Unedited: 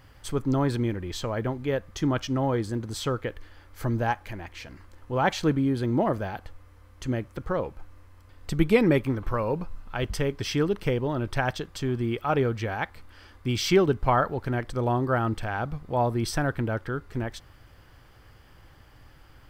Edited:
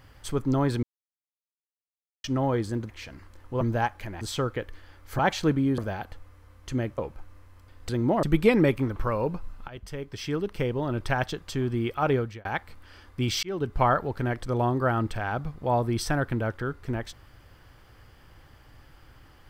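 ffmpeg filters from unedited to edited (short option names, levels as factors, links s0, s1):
-filter_complex "[0:a]asplit=14[s0][s1][s2][s3][s4][s5][s6][s7][s8][s9][s10][s11][s12][s13];[s0]atrim=end=0.83,asetpts=PTS-STARTPTS,afade=t=out:st=0.826:d=0.004:c=hsin[s14];[s1]atrim=start=0.83:end=2.24,asetpts=PTS-STARTPTS,volume=0[s15];[s2]atrim=start=2.24:end=2.892,asetpts=PTS-STARTPTS,afade=t=in:d=0.004:c=hsin[s16];[s3]atrim=start=4.468:end=5.192[s17];[s4]atrim=start=3.868:end=4.472[s18];[s5]atrim=start=2.888:end=3.872[s19];[s6]atrim=start=5.188:end=5.782[s20];[s7]atrim=start=6.118:end=7.322[s21];[s8]atrim=start=7.588:end=8.502[s22];[s9]atrim=start=5.778:end=6.122[s23];[s10]atrim=start=8.498:end=9.95,asetpts=PTS-STARTPTS,afade=t=out:st=1.448:d=0.004:c=hsin:silence=0.16788[s24];[s11]atrim=start=9.95:end=12.72,asetpts=PTS-STARTPTS,afade=t=in:d=1.29:silence=0.16788,afade=t=out:st=2.47:d=0.3[s25];[s12]atrim=start=12.72:end=13.7,asetpts=PTS-STARTPTS,afade=t=in:d=0.004:c=hsin,afade=t=out:st=0.976:d=0.004:c=hsin[s26];[s13]atrim=start=13.7,asetpts=PTS-STARTPTS,afade=t=in:d=0.36[s27];[s14][s15][s16]concat=n=3:v=0:a=1[s28];[s28][s17]acrossfade=d=0.004:c1=hsin:c2=hsin[s29];[s29][s18]acrossfade=d=0.004:c1=hsin:c2=hsin[s30];[s30][s19]acrossfade=d=0.004:c1=hsin:c2=hsin[s31];[s31][s20]acrossfade=d=0.004:c1=hsin:c2=hsin[s32];[s32][s21]acrossfade=d=0.004:c1=hsin:c2=hsin[s33];[s33][s22]acrossfade=d=0.004:c1=hsin:c2=hsin[s34];[s34][s23]acrossfade=d=0.004:c1=hsin:c2=hsin[s35];[s24][s25][s26][s27]concat=n=4:v=0:a=1[s36];[s35][s36]acrossfade=d=0.004:c1=hsin:c2=hsin"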